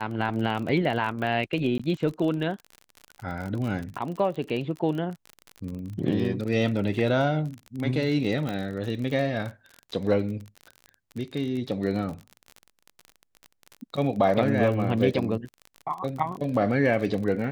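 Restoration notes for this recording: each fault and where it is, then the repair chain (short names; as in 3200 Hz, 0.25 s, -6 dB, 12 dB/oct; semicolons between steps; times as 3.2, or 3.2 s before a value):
crackle 38/s -32 dBFS
1.78–1.79 gap 15 ms
8.49 pop -18 dBFS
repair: de-click; interpolate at 1.78, 15 ms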